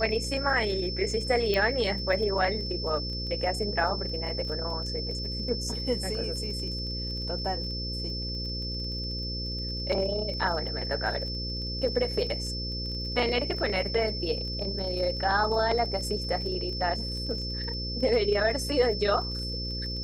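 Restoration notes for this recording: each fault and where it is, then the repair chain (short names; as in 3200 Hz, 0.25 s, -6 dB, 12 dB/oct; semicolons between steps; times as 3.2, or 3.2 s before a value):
buzz 60 Hz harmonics 9 -35 dBFS
crackle 22/s -36 dBFS
tone 5300 Hz -34 dBFS
1.54 pop -14 dBFS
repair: de-click; de-hum 60 Hz, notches 9; notch 5300 Hz, Q 30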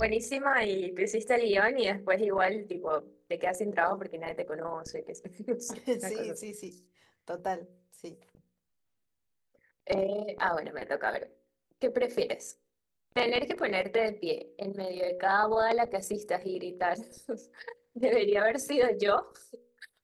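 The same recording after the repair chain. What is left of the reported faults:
1.54 pop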